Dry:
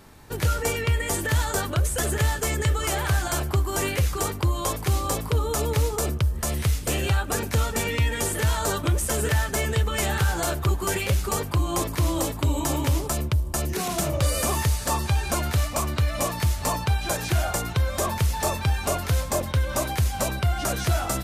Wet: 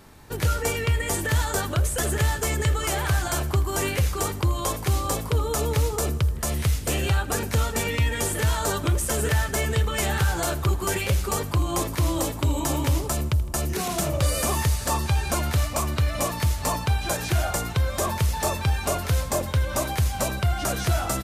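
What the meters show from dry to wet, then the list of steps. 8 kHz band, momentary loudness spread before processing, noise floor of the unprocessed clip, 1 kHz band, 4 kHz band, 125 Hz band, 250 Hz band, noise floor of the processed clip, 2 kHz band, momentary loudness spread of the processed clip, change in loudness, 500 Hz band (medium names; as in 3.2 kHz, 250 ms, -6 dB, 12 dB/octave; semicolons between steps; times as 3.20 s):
0.0 dB, 2 LU, -33 dBFS, 0.0 dB, 0.0 dB, 0.0 dB, 0.0 dB, -33 dBFS, 0.0 dB, 2 LU, 0.0 dB, 0.0 dB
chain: feedback delay 81 ms, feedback 60%, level -19.5 dB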